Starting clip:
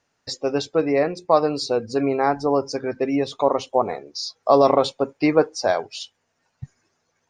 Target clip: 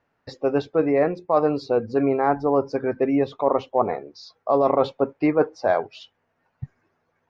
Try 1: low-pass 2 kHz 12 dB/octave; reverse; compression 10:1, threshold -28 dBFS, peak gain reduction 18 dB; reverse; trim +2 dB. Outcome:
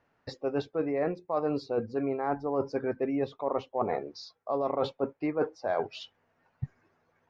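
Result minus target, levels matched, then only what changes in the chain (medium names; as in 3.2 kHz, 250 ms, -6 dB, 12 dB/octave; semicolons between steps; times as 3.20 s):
compression: peak gain reduction +11 dB
change: compression 10:1, threshold -16 dBFS, peak gain reduction 7.5 dB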